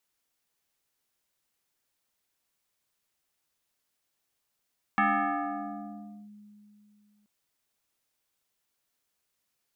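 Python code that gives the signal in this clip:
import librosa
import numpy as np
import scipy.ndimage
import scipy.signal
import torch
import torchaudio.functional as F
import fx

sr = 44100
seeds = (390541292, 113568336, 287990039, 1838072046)

y = fx.fm2(sr, length_s=2.28, level_db=-20, carrier_hz=208.0, ratio=2.4, index=3.5, index_s=1.31, decay_s=2.99, shape='linear')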